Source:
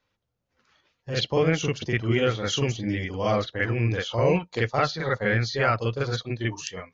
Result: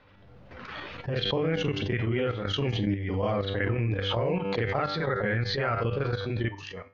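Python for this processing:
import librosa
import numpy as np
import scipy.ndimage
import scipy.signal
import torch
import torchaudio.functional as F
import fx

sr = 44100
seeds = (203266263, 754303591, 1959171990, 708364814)

y = fx.level_steps(x, sr, step_db=13)
y = fx.air_absorb(y, sr, metres=330.0)
y = fx.comb_fb(y, sr, f0_hz=98.0, decay_s=0.44, harmonics='all', damping=0.0, mix_pct=60)
y = fx.pre_swell(y, sr, db_per_s=28.0)
y = y * 10.0 ** (6.5 / 20.0)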